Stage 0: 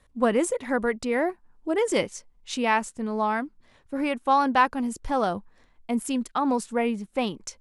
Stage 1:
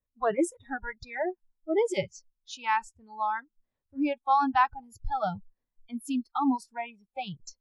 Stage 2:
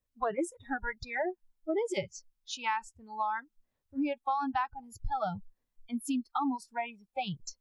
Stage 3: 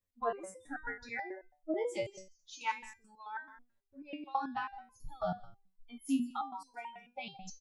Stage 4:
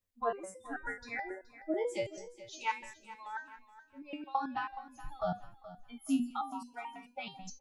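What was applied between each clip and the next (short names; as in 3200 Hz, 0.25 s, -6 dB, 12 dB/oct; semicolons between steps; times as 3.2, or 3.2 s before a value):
spectral noise reduction 28 dB; tilt shelf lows +5 dB; gain -2.5 dB
compressor 6:1, threshold -31 dBFS, peak gain reduction 13 dB; gain +2.5 dB
echo 0.165 s -15.5 dB; stepped resonator 9.2 Hz 90–510 Hz; gain +6 dB
feedback echo 0.423 s, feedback 33%, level -16 dB; gain +1 dB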